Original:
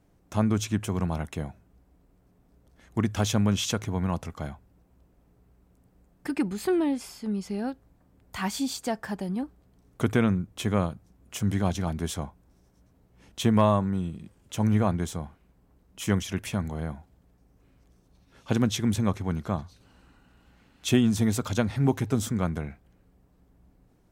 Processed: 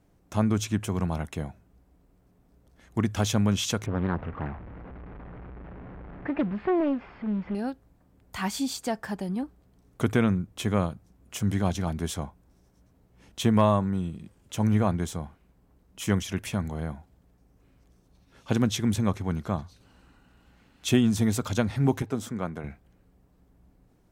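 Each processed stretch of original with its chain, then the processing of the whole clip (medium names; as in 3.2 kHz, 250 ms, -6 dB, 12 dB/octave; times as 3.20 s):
3.86–7.55 s: jump at every zero crossing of -37 dBFS + low-pass 2.1 kHz 24 dB/octave + loudspeaker Doppler distortion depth 0.82 ms
22.02–22.64 s: high-pass 300 Hz 6 dB/octave + treble shelf 2.5 kHz -8 dB
whole clip: none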